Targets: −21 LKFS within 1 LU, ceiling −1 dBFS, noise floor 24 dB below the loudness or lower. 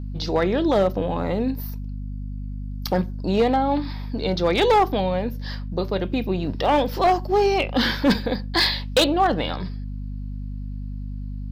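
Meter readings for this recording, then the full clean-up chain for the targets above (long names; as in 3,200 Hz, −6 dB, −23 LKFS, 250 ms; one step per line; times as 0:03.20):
share of clipped samples 0.9%; peaks flattened at −12.0 dBFS; mains hum 50 Hz; hum harmonics up to 250 Hz; level of the hum −28 dBFS; integrated loudness −22.0 LKFS; sample peak −12.0 dBFS; target loudness −21.0 LKFS
→ clipped peaks rebuilt −12 dBFS
hum removal 50 Hz, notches 5
level +1 dB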